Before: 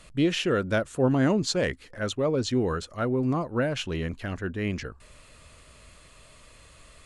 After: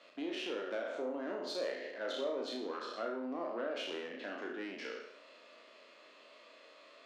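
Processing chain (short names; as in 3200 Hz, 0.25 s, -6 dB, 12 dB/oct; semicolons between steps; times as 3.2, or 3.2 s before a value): spectral trails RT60 0.72 s; LPF 4900 Hz 24 dB/oct; compressor 10:1, threshold -29 dBFS, peak gain reduction 12.5 dB; tube stage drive 26 dB, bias 0.4; steep high-pass 260 Hz 36 dB/oct; bell 600 Hz +5.5 dB 0.54 oct; flutter echo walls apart 6 m, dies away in 0.37 s; gain -6 dB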